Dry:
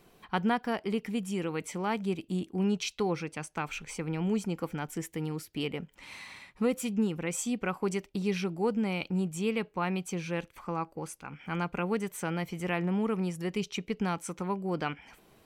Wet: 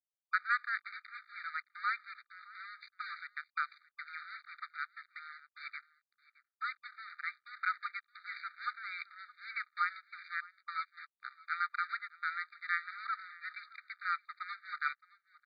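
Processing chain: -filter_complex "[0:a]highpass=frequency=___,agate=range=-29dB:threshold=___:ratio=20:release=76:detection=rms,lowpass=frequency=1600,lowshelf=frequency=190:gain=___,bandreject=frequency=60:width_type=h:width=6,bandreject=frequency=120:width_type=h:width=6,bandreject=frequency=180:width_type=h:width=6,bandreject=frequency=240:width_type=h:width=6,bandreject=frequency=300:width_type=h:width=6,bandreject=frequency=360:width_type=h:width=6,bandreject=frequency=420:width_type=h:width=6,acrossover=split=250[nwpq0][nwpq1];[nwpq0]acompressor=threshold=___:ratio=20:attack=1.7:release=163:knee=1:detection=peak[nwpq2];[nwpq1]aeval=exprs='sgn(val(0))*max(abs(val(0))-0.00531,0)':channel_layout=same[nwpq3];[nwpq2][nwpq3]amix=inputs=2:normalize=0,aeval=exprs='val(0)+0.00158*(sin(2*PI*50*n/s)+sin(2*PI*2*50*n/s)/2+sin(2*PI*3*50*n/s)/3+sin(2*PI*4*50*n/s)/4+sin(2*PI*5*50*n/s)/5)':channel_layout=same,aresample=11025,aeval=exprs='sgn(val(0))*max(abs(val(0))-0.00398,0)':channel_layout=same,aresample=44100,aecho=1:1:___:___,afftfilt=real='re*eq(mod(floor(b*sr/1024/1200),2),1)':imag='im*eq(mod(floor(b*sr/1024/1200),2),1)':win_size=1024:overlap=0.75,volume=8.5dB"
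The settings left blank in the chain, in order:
82, -51dB, 11, -39dB, 618, 0.0841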